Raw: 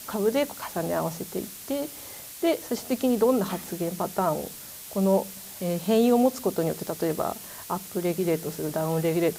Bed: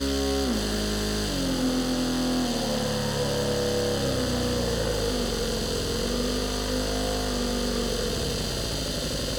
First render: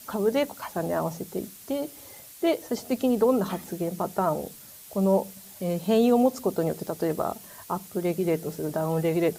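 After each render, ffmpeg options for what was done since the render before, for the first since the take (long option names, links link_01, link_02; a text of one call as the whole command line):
ffmpeg -i in.wav -af "afftdn=noise_reduction=7:noise_floor=-42" out.wav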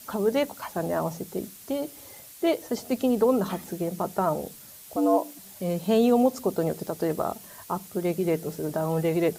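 ffmpeg -i in.wav -filter_complex "[0:a]asettb=1/sr,asplit=3[link_01][link_02][link_03];[link_01]atrim=end=4.964[link_04];[link_02]atrim=start=4.96:end=5.39,asetpts=PTS-STARTPTS,afade=type=in:duration=0.004:curve=qsin,afade=type=out:start_time=0.426:duration=0.004:curve=qsin,afreqshift=100[link_05];[link_03]atrim=start=5.386[link_06];[link_04][link_05]acrossfade=duration=0.004:curve1=hsin:curve2=qsin[link_07];[link_07][link_06]acrossfade=duration=0.004:curve1=qsin:curve2=hsin" out.wav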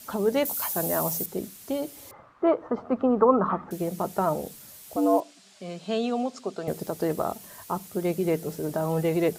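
ffmpeg -i in.wav -filter_complex "[0:a]asettb=1/sr,asplit=3[link_01][link_02][link_03];[link_01]atrim=end=0.454[link_04];[link_02]atrim=start=0.45:end=1.26,asetpts=PTS-STARTPTS,afade=type=in:duration=0.004:curve=qsin,afade=type=out:start_time=0.806:duration=0.004:curve=qsin,aemphasis=mode=production:type=75fm[link_05];[link_03]atrim=start=1.256[link_06];[link_04][link_05]acrossfade=duration=0.004:curve1=hsin:curve2=qsin[link_07];[link_07][link_06]acrossfade=duration=0.004:curve1=qsin:curve2=hsin,asettb=1/sr,asplit=3[link_08][link_09][link_10];[link_08]atrim=end=2.114[link_11];[link_09]atrim=start=2.11:end=3.71,asetpts=PTS-STARTPTS,afade=type=in:duration=0.004:curve=qsin,afade=type=out:start_time=1.596:duration=0.004:curve=qsin,lowpass=frequency=1200:width_type=q:width=5.2[link_12];[link_10]atrim=start=3.706[link_13];[link_11][link_12]acrossfade=duration=0.004:curve1=hsin:curve2=qsin[link_14];[link_14][link_13]acrossfade=duration=0.004:curve1=qsin:curve2=hsin,asettb=1/sr,asplit=3[link_15][link_16][link_17];[link_15]atrim=end=5.204[link_18];[link_16]atrim=start=5.2:end=6.68,asetpts=PTS-STARTPTS,afade=type=in:duration=0.004:curve=qsin,afade=type=out:start_time=1.476:duration=0.004:curve=qsin,highpass=290,equalizer=frequency=310:width_type=q:width=4:gain=-9,equalizer=frequency=510:width_type=q:width=4:gain=-9,equalizer=frequency=890:width_type=q:width=4:gain=-9,equalizer=frequency=1900:width_type=q:width=4:gain=-3,equalizer=frequency=6100:width_type=q:width=4:gain=-4,lowpass=frequency=6900:width=0.5412,lowpass=frequency=6900:width=1.3066[link_19];[link_17]atrim=start=6.676[link_20];[link_18][link_19]acrossfade=duration=0.004:curve1=hsin:curve2=qsin[link_21];[link_21][link_20]acrossfade=duration=0.004:curve1=qsin:curve2=hsin" out.wav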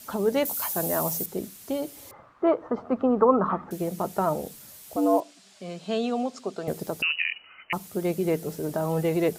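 ffmpeg -i in.wav -filter_complex "[0:a]asettb=1/sr,asplit=3[link_01][link_02][link_03];[link_01]atrim=end=7.024[link_04];[link_02]atrim=start=7.02:end=7.73,asetpts=PTS-STARTPTS,afade=type=in:duration=0.004:curve=qsin,afade=type=out:start_time=0.706:duration=0.004:curve=qsin,lowpass=frequency=2600:width_type=q:width=0.5098,lowpass=frequency=2600:width_type=q:width=0.6013,lowpass=frequency=2600:width_type=q:width=0.9,lowpass=frequency=2600:width_type=q:width=2.563,afreqshift=-3100[link_05];[link_03]atrim=start=7.726[link_06];[link_04][link_05]acrossfade=duration=0.004:curve1=hsin:curve2=qsin[link_07];[link_07][link_06]acrossfade=duration=0.004:curve1=qsin:curve2=hsin" out.wav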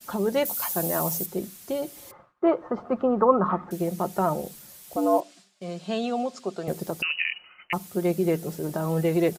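ffmpeg -i in.wav -af "agate=range=-33dB:threshold=-45dB:ratio=3:detection=peak,aecho=1:1:5.6:0.36" out.wav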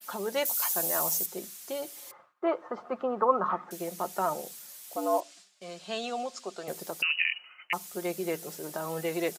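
ffmpeg -i in.wav -af "highpass=frequency=960:poles=1,adynamicequalizer=threshold=0.00398:dfrequency=6600:dqfactor=1.4:tfrequency=6600:tqfactor=1.4:attack=5:release=100:ratio=0.375:range=2:mode=boostabove:tftype=bell" out.wav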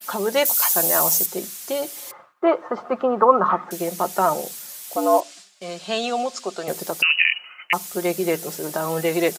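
ffmpeg -i in.wav -af "volume=10dB,alimiter=limit=-2dB:level=0:latency=1" out.wav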